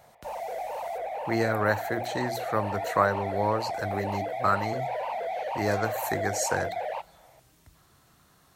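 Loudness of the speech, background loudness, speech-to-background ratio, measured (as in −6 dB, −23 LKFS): −29.5 LKFS, −33.0 LKFS, 3.5 dB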